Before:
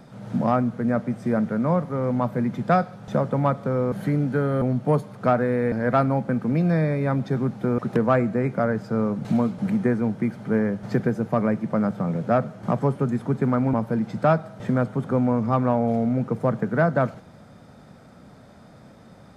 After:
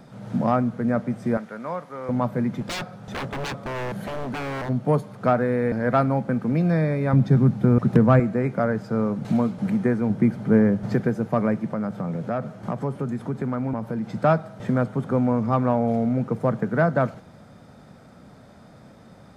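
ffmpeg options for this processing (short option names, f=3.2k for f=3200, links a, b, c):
-filter_complex "[0:a]asettb=1/sr,asplit=3[a][b][c];[a]atrim=end=1.374[d];[b]atrim=start=1.37:end=2.09,asetpts=PTS-STARTPTS,afade=t=in:d=0.004:c=qsin,afade=t=out:st=0.716:d=0.004:c=qsin,highpass=f=1.1k:p=1[e];[c]atrim=start=2.086[f];[d][e]acrossfade=d=0.004:c1=hsin:c2=qsin[g];[g][f]acrossfade=d=0.004:c1=qsin:c2=hsin,asplit=3[h][i][j];[h]afade=t=out:st=2.6:d=0.02[k];[i]aeval=exprs='0.0596*(abs(mod(val(0)/0.0596+3,4)-2)-1)':c=same,afade=t=in:st=2.6:d=0.02,afade=t=out:st=4.68:d=0.02[l];[j]afade=t=in:st=4.68:d=0.02[m];[k][l][m]amix=inputs=3:normalize=0,asettb=1/sr,asplit=3[n][o][p];[n]atrim=end=7.134[q];[o]atrim=start=7.13:end=8.2,asetpts=PTS-STARTPTS,afade=t=in:d=0.004:c=qsin,afade=t=out:st=1.066:d=0.004:c=qsin,bass=f=250:g=10,treble=f=4k:g=0[r];[p]atrim=start=8.196[s];[q][r]acrossfade=d=0.004:c1=hsin:c2=qsin[t];[t][s]acrossfade=d=0.004:c1=qsin:c2=hsin,asettb=1/sr,asplit=3[u][v][w];[u]atrim=end=10.104[x];[v]atrim=start=10.1:end=10.94,asetpts=PTS-STARTPTS,afade=t=in:d=0.004:c=qsin,afade=t=out:st=0.836:d=0.004:c=qsin,lowshelf=f=500:g=6.5[y];[w]atrim=start=10.936[z];[x][y]acrossfade=d=0.004:c1=hsin:c2=qsin[aa];[aa][z]acrossfade=d=0.004:c1=qsin:c2=hsin,asettb=1/sr,asplit=3[ab][ac][ad];[ab]atrim=end=11.714[ae];[ac]atrim=start=11.71:end=14.07,asetpts=PTS-STARTPTS,afade=t=in:d=0.004:c=qsin,afade=t=out:st=2.356:d=0.004:c=qsin,acompressor=threshold=-26dB:ratio=2:attack=3.2:release=140:knee=1:detection=peak[af];[ad]atrim=start=14.066[ag];[ae][af]acrossfade=d=0.004:c1=hsin:c2=qsin[ah];[ah][ag]acrossfade=d=0.004:c1=qsin:c2=hsin"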